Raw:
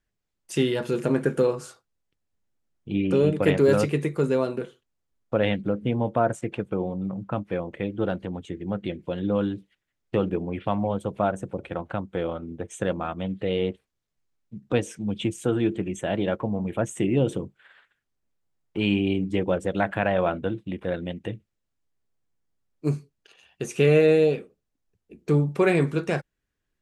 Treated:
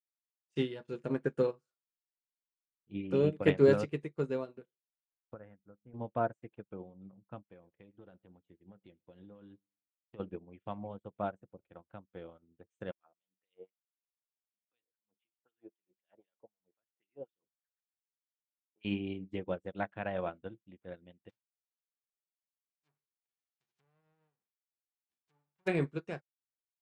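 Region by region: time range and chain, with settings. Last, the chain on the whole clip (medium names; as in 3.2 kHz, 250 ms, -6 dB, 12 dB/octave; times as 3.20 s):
5.34–5.94 s: four-pole ladder low-pass 1.7 kHz, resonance 45% + bass shelf 88 Hz +9.5 dB
7.47–10.20 s: compression 8:1, threshold -25 dBFS + feedback delay 105 ms, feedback 38%, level -20.5 dB
12.91–18.85 s: LFO band-pass sine 3.9 Hz 500–5100 Hz + distance through air 98 m
21.29–25.66 s: formants flattened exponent 0.1 + low-pass that closes with the level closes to 1.1 kHz, closed at -19 dBFS + compression 2:1, threshold -50 dBFS
whole clip: Bessel low-pass 5.3 kHz, order 2; upward expansion 2.5:1, over -43 dBFS; trim -3 dB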